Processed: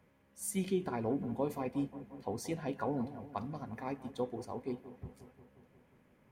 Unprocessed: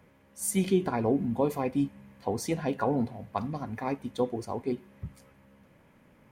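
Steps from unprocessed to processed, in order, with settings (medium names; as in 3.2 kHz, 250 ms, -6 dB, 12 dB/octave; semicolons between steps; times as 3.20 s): feedback echo behind a low-pass 178 ms, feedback 68%, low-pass 1.6 kHz, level -14 dB; trim -8 dB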